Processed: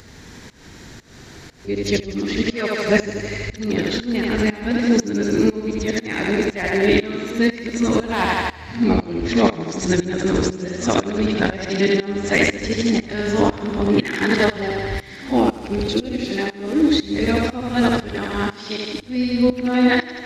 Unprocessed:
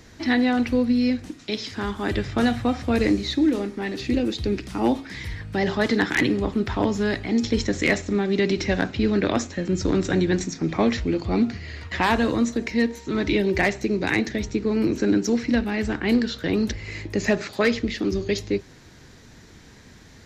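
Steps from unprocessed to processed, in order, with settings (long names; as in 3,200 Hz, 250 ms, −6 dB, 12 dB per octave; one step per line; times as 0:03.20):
played backwards from end to start
feedback echo with a high-pass in the loop 80 ms, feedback 68%, high-pass 150 Hz, level −3 dB
shaped tremolo saw up 2 Hz, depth 90%
upward compression, threshold −39 dBFS
level +5.5 dB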